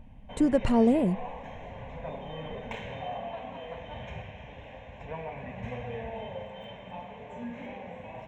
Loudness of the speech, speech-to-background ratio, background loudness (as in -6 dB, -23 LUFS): -25.5 LUFS, 15.0 dB, -40.5 LUFS